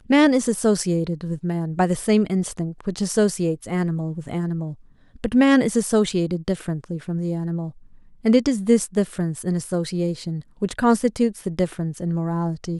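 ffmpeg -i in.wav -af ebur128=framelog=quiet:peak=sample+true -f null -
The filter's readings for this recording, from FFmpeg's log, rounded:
Integrated loudness:
  I:         -22.3 LUFS
  Threshold: -32.5 LUFS
Loudness range:
  LRA:         2.1 LU
  Threshold: -42.7 LUFS
  LRA low:   -23.8 LUFS
  LRA high:  -21.7 LUFS
Sample peak:
  Peak:       -4.3 dBFS
True peak:
  Peak:       -4.3 dBFS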